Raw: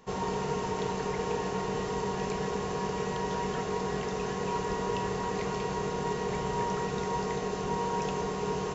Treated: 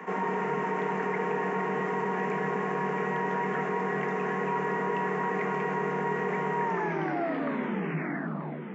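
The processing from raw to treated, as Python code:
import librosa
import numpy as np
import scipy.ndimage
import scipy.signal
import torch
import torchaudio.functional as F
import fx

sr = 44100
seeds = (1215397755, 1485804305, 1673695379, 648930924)

y = fx.tape_stop_end(x, sr, length_s=2.11)
y = scipy.signal.sosfilt(scipy.signal.cheby1(10, 1.0, 150.0, 'highpass', fs=sr, output='sos'), y)
y = fx.high_shelf_res(y, sr, hz=2900.0, db=-13.0, q=3.0)
y = fx.notch(y, sr, hz=540.0, q=12.0)
y = y + 10.0 ** (-17.0 / 20.0) * np.pad(y, (int(934 * sr / 1000.0), 0))[:len(y)]
y = fx.env_flatten(y, sr, amount_pct=50)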